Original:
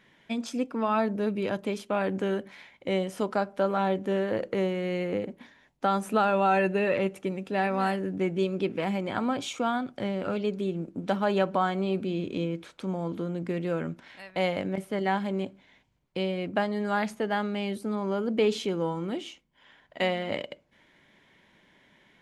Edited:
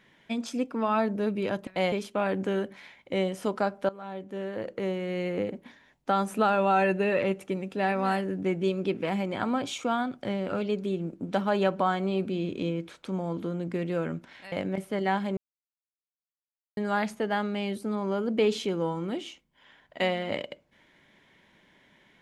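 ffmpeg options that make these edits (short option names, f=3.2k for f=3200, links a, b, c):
-filter_complex "[0:a]asplit=7[a][b][c][d][e][f][g];[a]atrim=end=1.672[h];[b]atrim=start=14.268:end=14.522[i];[c]atrim=start=1.668:end=3.64,asetpts=PTS-STARTPTS,afade=t=out:st=1.968:d=0.004:c=hsin:silence=0.112202[j];[d]atrim=start=3.64:end=14.272,asetpts=PTS-STARTPTS,afade=t=in:d=1.48:silence=0.112202[k];[e]atrim=start=14.518:end=15.37,asetpts=PTS-STARTPTS,afade=t=out:st=0.848:d=0.004:c=hsin[l];[f]atrim=start=15.37:end=16.77,asetpts=PTS-STARTPTS,volume=0[m];[g]atrim=start=16.77,asetpts=PTS-STARTPTS,afade=t=in:d=0.004:c=hsin[n];[h][i]acrossfade=d=0.004:c1=hsin:c2=hsin[o];[j][k]concat=n=2:v=0:a=1[p];[o][p]acrossfade=d=0.004:c1=hsin:c2=hsin[q];[l][m][n]concat=n=3:v=0:a=1[r];[q][r]acrossfade=d=0.004:c1=hsin:c2=hsin"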